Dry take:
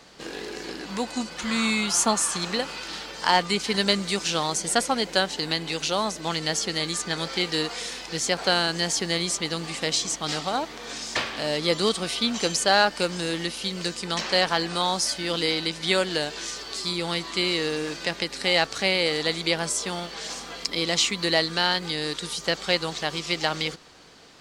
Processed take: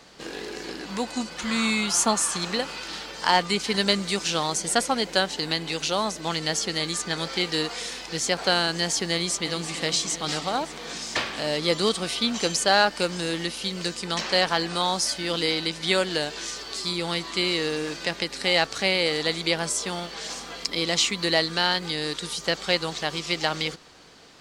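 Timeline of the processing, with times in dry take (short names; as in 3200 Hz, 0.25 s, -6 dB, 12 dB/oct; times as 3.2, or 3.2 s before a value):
9.12–9.76 echo throw 0.34 s, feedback 75%, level -10.5 dB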